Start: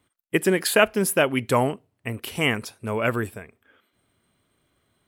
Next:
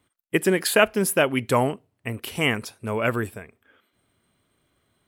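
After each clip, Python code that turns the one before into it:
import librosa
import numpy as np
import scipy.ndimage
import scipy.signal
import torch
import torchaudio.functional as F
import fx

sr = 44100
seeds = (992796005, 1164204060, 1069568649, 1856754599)

y = x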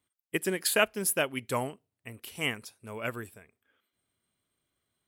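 y = fx.high_shelf(x, sr, hz=3000.0, db=8.5)
y = fx.upward_expand(y, sr, threshold_db=-27.0, expansion=1.5)
y = y * 10.0 ** (-8.0 / 20.0)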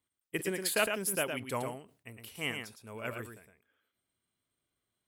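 y = x + 10.0 ** (-6.0 / 20.0) * np.pad(x, (int(111 * sr / 1000.0), 0))[:len(x)]
y = fx.sustainer(y, sr, db_per_s=150.0)
y = y * 10.0 ** (-5.0 / 20.0)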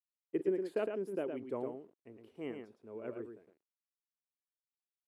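y = fx.quant_dither(x, sr, seeds[0], bits=10, dither='none')
y = fx.bandpass_q(y, sr, hz=360.0, q=2.5)
y = y * 10.0 ** (4.5 / 20.0)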